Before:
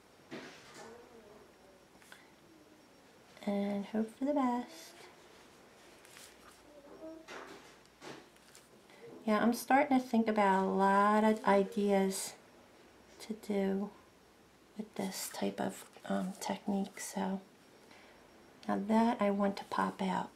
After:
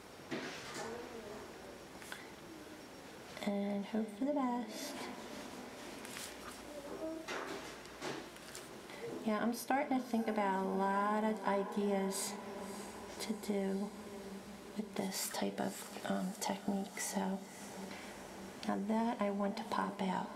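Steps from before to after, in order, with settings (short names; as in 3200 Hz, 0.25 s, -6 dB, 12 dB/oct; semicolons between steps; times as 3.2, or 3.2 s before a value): 16.12–16.8 gate -45 dBFS, range -6 dB; compressor 2.5:1, threshold -47 dBFS, peak gain reduction 16 dB; diffused feedback echo 0.587 s, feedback 64%, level -13 dB; gain +8 dB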